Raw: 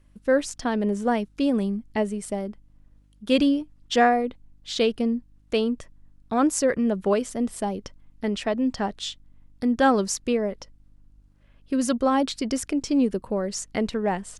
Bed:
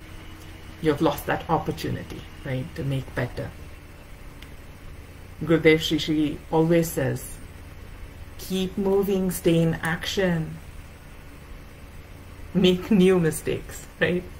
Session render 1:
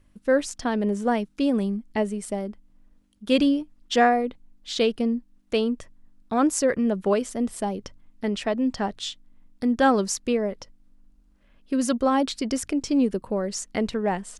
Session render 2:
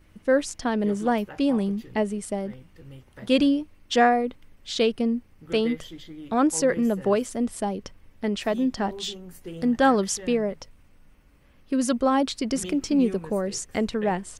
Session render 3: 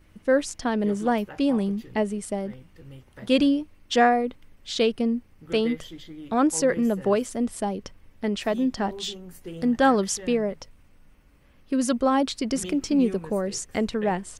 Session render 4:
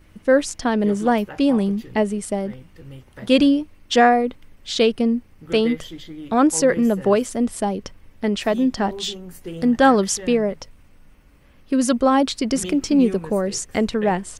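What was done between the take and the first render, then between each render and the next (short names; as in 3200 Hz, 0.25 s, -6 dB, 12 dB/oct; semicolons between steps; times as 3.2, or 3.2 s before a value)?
de-hum 50 Hz, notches 3
add bed -18 dB
nothing audible
gain +5 dB; limiter -3 dBFS, peak gain reduction 1 dB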